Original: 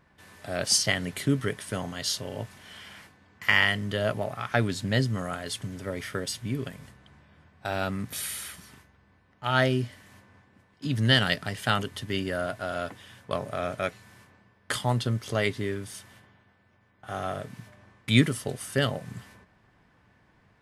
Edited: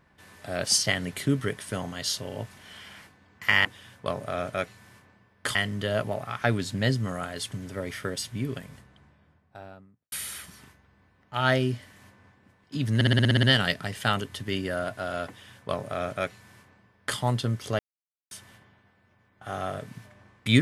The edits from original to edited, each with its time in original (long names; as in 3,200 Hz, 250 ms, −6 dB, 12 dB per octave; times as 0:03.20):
0:06.69–0:08.22: fade out and dull
0:11.05: stutter 0.06 s, 9 plays
0:12.90–0:14.80: duplicate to 0:03.65
0:15.41–0:15.93: silence